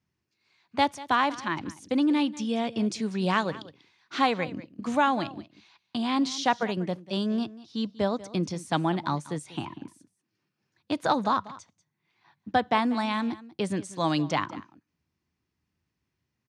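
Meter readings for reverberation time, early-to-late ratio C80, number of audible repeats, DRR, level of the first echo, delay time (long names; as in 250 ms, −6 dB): no reverb audible, no reverb audible, 1, no reverb audible, −18.0 dB, 191 ms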